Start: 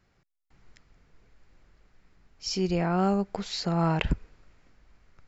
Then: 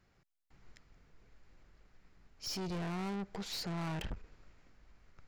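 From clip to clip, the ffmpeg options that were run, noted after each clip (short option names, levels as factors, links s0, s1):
-af "aeval=exprs='(tanh(56.2*val(0)+0.4)-tanh(0.4))/56.2':c=same,volume=0.841"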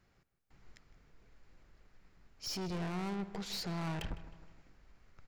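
-filter_complex "[0:a]asplit=2[s0][s1];[s1]adelay=156,lowpass=f=3000:p=1,volume=0.2,asplit=2[s2][s3];[s3]adelay=156,lowpass=f=3000:p=1,volume=0.51,asplit=2[s4][s5];[s5]adelay=156,lowpass=f=3000:p=1,volume=0.51,asplit=2[s6][s7];[s7]adelay=156,lowpass=f=3000:p=1,volume=0.51,asplit=2[s8][s9];[s9]adelay=156,lowpass=f=3000:p=1,volume=0.51[s10];[s0][s2][s4][s6][s8][s10]amix=inputs=6:normalize=0"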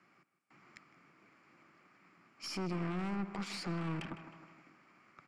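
-filter_complex "[0:a]highpass=f=160:w=0.5412,highpass=f=160:w=1.3066,equalizer=f=320:t=q:w=4:g=6,equalizer=f=460:t=q:w=4:g=-7,equalizer=f=1200:t=q:w=4:g=10,equalizer=f=2300:t=q:w=4:g=8,equalizer=f=3800:t=q:w=4:g=-9,equalizer=f=6300:t=q:w=4:g=-7,lowpass=f=9200:w=0.5412,lowpass=f=9200:w=1.3066,acrossover=split=280[s0][s1];[s1]acompressor=threshold=0.00501:ratio=2.5[s2];[s0][s2]amix=inputs=2:normalize=0,aeval=exprs='(tanh(56.2*val(0)+0.6)-tanh(0.6))/56.2':c=same,volume=2.11"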